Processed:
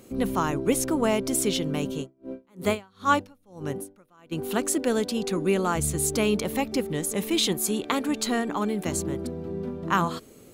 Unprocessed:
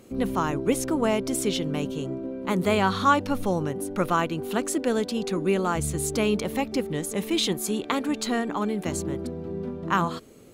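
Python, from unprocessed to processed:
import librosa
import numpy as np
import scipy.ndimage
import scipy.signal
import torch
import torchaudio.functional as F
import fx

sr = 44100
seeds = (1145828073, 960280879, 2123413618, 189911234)

y = fx.high_shelf(x, sr, hz=7500.0, db=6.5)
y = fx.tremolo_db(y, sr, hz=fx.line((1.97, 3.5), (4.31, 1.1)), depth_db=36, at=(1.97, 4.31), fade=0.02)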